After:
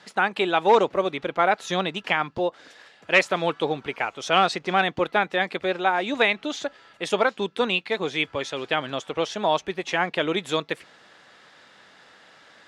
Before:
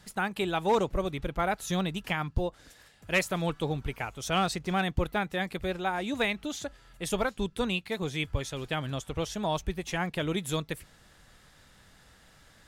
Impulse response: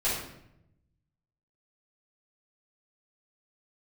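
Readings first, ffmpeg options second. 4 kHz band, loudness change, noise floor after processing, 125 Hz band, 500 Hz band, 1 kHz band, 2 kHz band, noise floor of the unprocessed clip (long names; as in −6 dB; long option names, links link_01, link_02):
+7.5 dB, +7.0 dB, −55 dBFS, −4.5 dB, +8.0 dB, +9.0 dB, +9.0 dB, −59 dBFS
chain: -af "highpass=340,lowpass=4300,volume=9dB"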